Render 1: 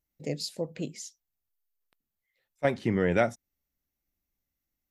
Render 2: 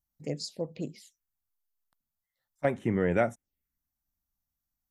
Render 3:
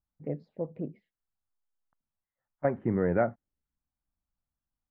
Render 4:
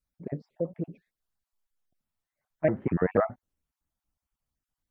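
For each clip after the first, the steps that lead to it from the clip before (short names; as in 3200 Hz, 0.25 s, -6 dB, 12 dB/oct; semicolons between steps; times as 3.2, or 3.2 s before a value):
envelope phaser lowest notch 420 Hz, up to 4600 Hz, full sweep at -28 dBFS; gain -1 dB
LPF 1600 Hz 24 dB/oct
random spectral dropouts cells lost 20%; shaped vibrato saw up 4.1 Hz, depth 250 cents; gain +4 dB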